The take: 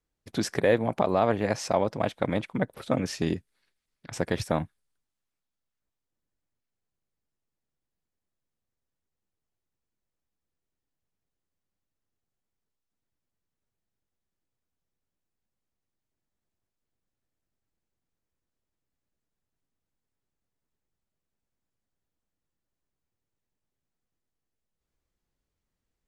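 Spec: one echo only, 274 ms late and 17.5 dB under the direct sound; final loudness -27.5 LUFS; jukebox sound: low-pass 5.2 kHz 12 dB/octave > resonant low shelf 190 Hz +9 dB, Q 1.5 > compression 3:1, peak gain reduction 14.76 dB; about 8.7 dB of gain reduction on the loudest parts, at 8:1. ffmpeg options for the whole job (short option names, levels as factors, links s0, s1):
-af "acompressor=threshold=0.0447:ratio=8,lowpass=5200,lowshelf=f=190:t=q:w=1.5:g=9,aecho=1:1:274:0.133,acompressor=threshold=0.00891:ratio=3,volume=6.31"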